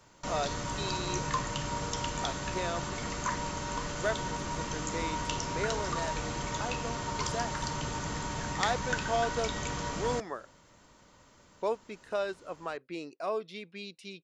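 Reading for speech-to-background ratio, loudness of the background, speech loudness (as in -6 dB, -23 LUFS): -3.0 dB, -34.5 LUFS, -37.5 LUFS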